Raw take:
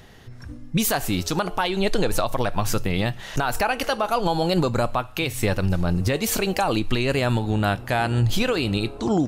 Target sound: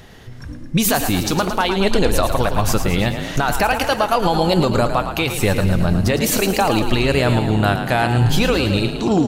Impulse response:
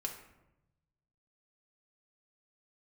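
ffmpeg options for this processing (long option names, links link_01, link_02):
-filter_complex "[0:a]acontrast=21,asplit=8[link_01][link_02][link_03][link_04][link_05][link_06][link_07][link_08];[link_02]adelay=110,afreqshift=30,volume=-8.5dB[link_09];[link_03]adelay=220,afreqshift=60,volume=-13.1dB[link_10];[link_04]adelay=330,afreqshift=90,volume=-17.7dB[link_11];[link_05]adelay=440,afreqshift=120,volume=-22.2dB[link_12];[link_06]adelay=550,afreqshift=150,volume=-26.8dB[link_13];[link_07]adelay=660,afreqshift=180,volume=-31.4dB[link_14];[link_08]adelay=770,afreqshift=210,volume=-36dB[link_15];[link_01][link_09][link_10][link_11][link_12][link_13][link_14][link_15]amix=inputs=8:normalize=0"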